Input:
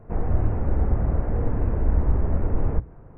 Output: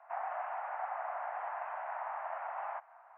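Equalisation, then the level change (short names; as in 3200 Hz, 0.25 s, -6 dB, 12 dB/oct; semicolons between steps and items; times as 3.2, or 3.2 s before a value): steep high-pass 680 Hz 72 dB/oct; air absorption 240 m; +4.0 dB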